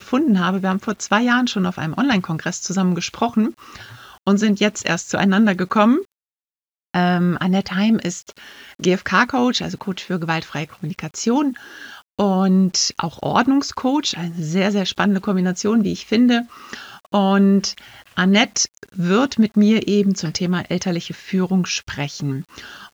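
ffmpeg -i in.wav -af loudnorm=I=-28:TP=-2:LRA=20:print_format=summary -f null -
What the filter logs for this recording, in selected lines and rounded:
Input Integrated:    -19.4 LUFS
Input True Peak:      -1.9 dBTP
Input LRA:             4.2 LU
Input Threshold:     -29.7 LUFS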